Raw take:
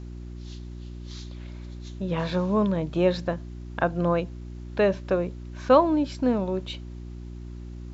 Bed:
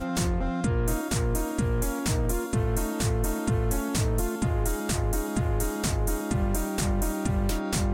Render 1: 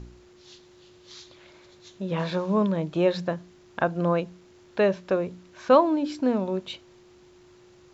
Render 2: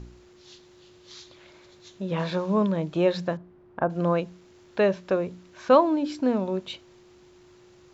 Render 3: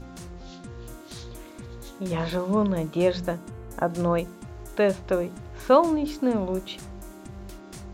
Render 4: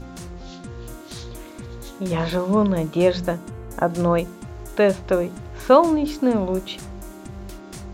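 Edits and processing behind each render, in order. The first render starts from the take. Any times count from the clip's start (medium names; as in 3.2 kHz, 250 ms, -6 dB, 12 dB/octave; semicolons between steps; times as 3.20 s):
de-hum 60 Hz, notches 5
3.37–3.90 s: low-pass 1.2 kHz
add bed -15 dB
trim +4.5 dB; peak limiter -2 dBFS, peak gain reduction 0.5 dB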